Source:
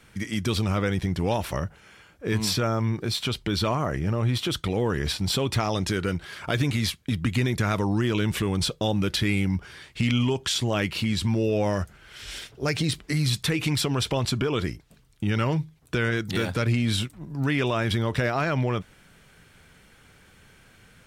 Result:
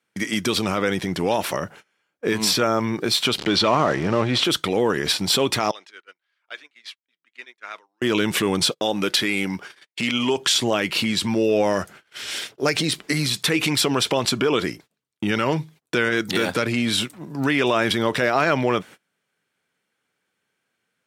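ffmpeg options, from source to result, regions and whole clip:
ffmpeg -i in.wav -filter_complex "[0:a]asettb=1/sr,asplit=3[link_01][link_02][link_03];[link_01]atrim=end=3.384[link_04];[link_02]atrim=start=3.38:end=4.44,asetpts=PTS-STARTPTS,afade=type=in:duration=0.004:curve=qsin,afade=type=out:start_time=1.056:duration=0.004:curve=qsin,aeval=exprs='val(0)+0.5*0.0178*sgn(val(0))':channel_layout=same,lowpass=5600,acontrast=86[link_05];[link_03]atrim=start=4.436[link_06];[link_04][link_05]acrossfade=duration=0.004:curve1=hsin:curve2=qsin[link_07];[link_07][link_06]acrossfade=duration=0.004:curve1=qsin:curve2=hsin,asettb=1/sr,asplit=3[link_08][link_09][link_10];[link_08]atrim=end=5.714[link_11];[link_09]atrim=start=5.71:end=8.02,asetpts=PTS-STARTPTS,afade=type=in:duration=0.004:curve=qsin,afade=type=out:start_time=2.306:duration=0.004:curve=qsin,highpass=330,lowpass=2200,aderivative[link_12];[link_10]atrim=start=8.016[link_13];[link_11][link_12]acrossfade=duration=0.004:curve1=hsin:curve2=qsin[link_14];[link_14][link_13]acrossfade=duration=0.004:curve1=qsin:curve2=hsin,asettb=1/sr,asplit=3[link_15][link_16][link_17];[link_15]atrim=end=8.714[link_18];[link_16]atrim=start=8.71:end=10.37,asetpts=PTS-STARTPTS,afade=type=in:duration=0.004:curve=qsin,afade=type=out:start_time=1.656:duration=0.004:curve=qsin,agate=range=-23dB:threshold=-45dB:ratio=16:release=100:detection=peak,lowshelf=frequency=140:gain=-12[link_19];[link_17]atrim=start=10.366[link_20];[link_18][link_19]acrossfade=duration=0.004:curve1=hsin:curve2=qsin[link_21];[link_21][link_20]acrossfade=duration=0.004:curve1=qsin:curve2=hsin,alimiter=limit=-17.5dB:level=0:latency=1:release=79,agate=range=-28dB:threshold=-45dB:ratio=16:detection=peak,highpass=250,volume=8.5dB" out.wav

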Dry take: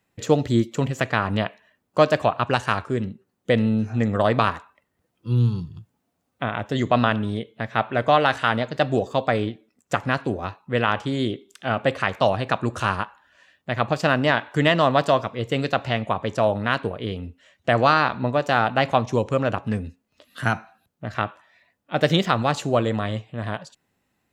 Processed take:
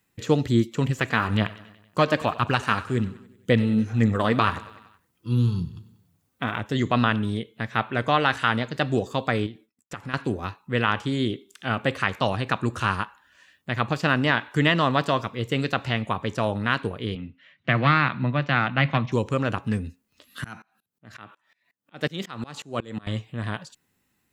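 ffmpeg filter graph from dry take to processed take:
ffmpeg -i in.wav -filter_complex "[0:a]asettb=1/sr,asplit=3[link_01][link_02][link_03];[link_01]atrim=end=0.894[link_04];[link_02]atrim=start=0.89:end=6.59,asetpts=PTS-STARTPTS,afade=type=in:duration=0.004:curve=qsin,afade=type=out:start_time=5.696:duration=0.004:curve=qsin,aecho=1:1:94|188|282|376|470:0.112|0.0673|0.0404|0.0242|0.0145,atrim=end_sample=251370,aphaser=in_gain=1:out_gain=1:delay=4.6:decay=0.33:speed=1.9:type=triangular[link_05];[link_03]atrim=start=6.586[link_06];[link_04][link_05]acrossfade=duration=0.004:curve1=hsin:curve2=qsin[link_07];[link_07][link_06]acrossfade=duration=0.004:curve1=qsin:curve2=hsin,asettb=1/sr,asplit=3[link_08][link_09][link_10];[link_08]atrim=end=9.464[link_11];[link_09]atrim=start=9.46:end=10.14,asetpts=PTS-STARTPTS,afade=type=in:duration=0.004:curve=qsin,afade=type=out:start_time=0.676:duration=0.004:curve=qsin,agate=range=-33dB:threshold=-57dB:ratio=3:release=100:detection=peak,bandreject=frequency=6400:width=18,acompressor=threshold=-34dB:ratio=2.5:attack=3.2:release=140:knee=1:detection=peak[link_12];[link_10]atrim=start=10.136[link_13];[link_11][link_12]acrossfade=duration=0.004:curve1=hsin:curve2=qsin[link_14];[link_14][link_13]acrossfade=duration=0.004:curve1=qsin:curve2=hsin,asettb=1/sr,asplit=3[link_15][link_16][link_17];[link_15]atrim=end=17.154[link_18];[link_16]atrim=start=17.15:end=19.12,asetpts=PTS-STARTPTS,afade=type=in:duration=0.004:curve=qsin,afade=type=out:start_time=1.966:duration=0.004:curve=qsin,aeval=exprs='clip(val(0),-1,0.158)':channel_layout=same,highpass=frequency=110:width=0.5412,highpass=frequency=110:width=1.3066,equalizer=frequency=140:width_type=q:width=4:gain=8,equalizer=frequency=430:width_type=q:width=4:gain=-9,equalizer=frequency=850:width_type=q:width=4:gain=-5,equalizer=frequency=2100:width_type=q:width=4:gain=5,lowpass=frequency=3800:width=0.5412,lowpass=frequency=3800:width=1.3066[link_19];[link_17]atrim=start=19.116[link_20];[link_18][link_19]acrossfade=duration=0.004:curve1=hsin:curve2=qsin[link_21];[link_21][link_20]acrossfade=duration=0.004:curve1=qsin:curve2=hsin,asettb=1/sr,asplit=3[link_22][link_23][link_24];[link_22]atrim=end=20.444[link_25];[link_23]atrim=start=20.44:end=23.07,asetpts=PTS-STARTPTS,afade=type=in:duration=0.004:curve=qsin,afade=type=out:start_time=2.626:duration=0.004:curve=qsin,highpass=130,aeval=exprs='val(0)*pow(10,-26*if(lt(mod(-5.5*n/s,1),2*abs(-5.5)/1000),1-mod(-5.5*n/s,1)/(2*abs(-5.5)/1000),(mod(-5.5*n/s,1)-2*abs(-5.5)/1000)/(1-2*abs(-5.5)/1000))/20)':channel_layout=same[link_26];[link_24]atrim=start=23.066[link_27];[link_25][link_26]acrossfade=duration=0.004:curve1=hsin:curve2=qsin[link_28];[link_28][link_27]acrossfade=duration=0.004:curve1=qsin:curve2=hsin,highshelf=frequency=7800:gain=8.5,acrossover=split=4200[link_29][link_30];[link_30]acompressor=threshold=-43dB:ratio=4:attack=1:release=60[link_31];[link_29][link_31]amix=inputs=2:normalize=0,equalizer=frequency=640:width=1.9:gain=-8" out.wav

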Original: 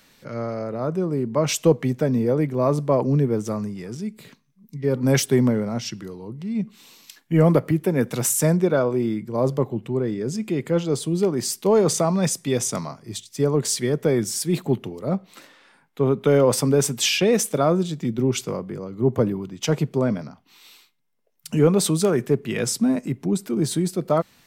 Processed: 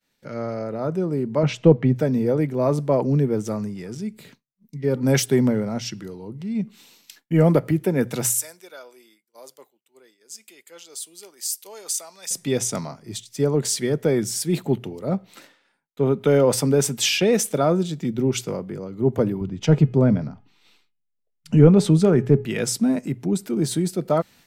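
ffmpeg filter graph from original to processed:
ffmpeg -i in.wav -filter_complex "[0:a]asettb=1/sr,asplit=3[link_01][link_02][link_03];[link_01]atrim=end=1.434[link_04];[link_02]atrim=start=1.43:end=1.96,asetpts=PTS-STARTPTS,afade=type=in:duration=0.004:curve=qsin,afade=type=out:start_time=0.526:duration=0.004:curve=qsin,lowpass=2900,lowshelf=frequency=250:gain=8[link_05];[link_03]atrim=start=1.956[link_06];[link_04][link_05]acrossfade=duration=0.004:curve1=hsin:curve2=qsin[link_07];[link_07][link_06]acrossfade=duration=0.004:curve1=qsin:curve2=hsin,asettb=1/sr,asplit=3[link_08][link_09][link_10];[link_08]atrim=end=8.384[link_11];[link_09]atrim=start=8.38:end=12.31,asetpts=PTS-STARTPTS,afade=type=in:duration=0.004:curve=qsin,afade=type=out:start_time=3.926:duration=0.004:curve=qsin,highpass=280,aderivative[link_12];[link_10]atrim=start=12.306[link_13];[link_11][link_12]acrossfade=duration=0.004:curve1=hsin:curve2=qsin[link_14];[link_14][link_13]acrossfade=duration=0.004:curve1=qsin:curve2=hsin,asettb=1/sr,asplit=3[link_15][link_16][link_17];[link_15]atrim=end=19.414[link_18];[link_16]atrim=start=19.41:end=22.45,asetpts=PTS-STARTPTS,afade=type=in:duration=0.004:curve=qsin,afade=type=out:start_time=3.036:duration=0.004:curve=qsin,aemphasis=mode=reproduction:type=bsi,bandreject=frequency=417.3:width_type=h:width=4,bandreject=frequency=834.6:width_type=h:width=4,bandreject=frequency=1251.9:width_type=h:width=4,bandreject=frequency=1669.2:width_type=h:width=4,bandreject=frequency=2086.5:width_type=h:width=4,bandreject=frequency=2503.8:width_type=h:width=4,bandreject=frequency=2921.1:width_type=h:width=4[link_19];[link_17]atrim=start=22.446[link_20];[link_18][link_19]acrossfade=duration=0.004:curve1=hsin:curve2=qsin[link_21];[link_21][link_20]acrossfade=duration=0.004:curve1=qsin:curve2=hsin,bandreject=frequency=60:width_type=h:width=6,bandreject=frequency=120:width_type=h:width=6,agate=range=-33dB:threshold=-45dB:ratio=3:detection=peak,bandreject=frequency=1100:width=8.8" out.wav

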